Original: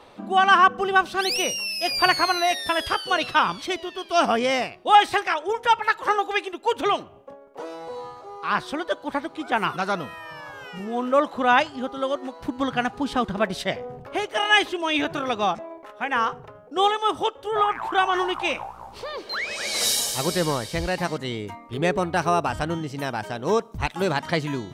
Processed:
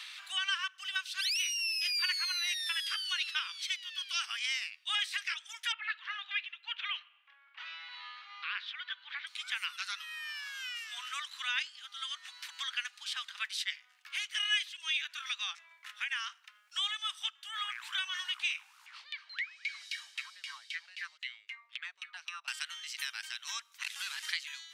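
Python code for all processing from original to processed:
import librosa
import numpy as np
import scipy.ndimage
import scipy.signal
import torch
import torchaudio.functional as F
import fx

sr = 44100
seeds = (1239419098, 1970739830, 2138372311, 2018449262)

y = fx.chain(x, sr, fx.transient(attack_db=-3, sustain_db=3),
    fx.lowpass(hz=3100.0, slope=24), at=(5.72, 9.27))
y = fx.chain(y, sr, fx.filter_lfo_bandpass(shape='saw_down', hz=3.8, low_hz=280.0, high_hz=2700.0, q=5.0),
    fx.band_squash(depth_pct=70), at=(18.86, 22.48))
y = fx.chain(y, sr, fx.delta_mod(bps=64000, step_db=-38.0),
    fx.transformer_sat(knee_hz=320.0), at=(23.83, 24.32))
y = scipy.signal.sosfilt(scipy.signal.bessel(6, 2900.0, 'highpass', norm='mag', fs=sr, output='sos'), y)
y = fx.high_shelf(y, sr, hz=8300.0, db=-8.5)
y = fx.band_squash(y, sr, depth_pct=70)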